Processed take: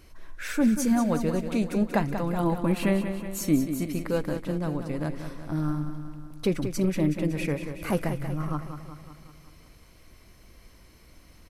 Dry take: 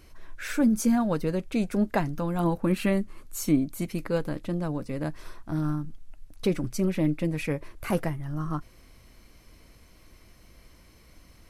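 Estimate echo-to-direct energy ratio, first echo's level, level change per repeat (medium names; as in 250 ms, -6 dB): -7.0 dB, -9.0 dB, -4.5 dB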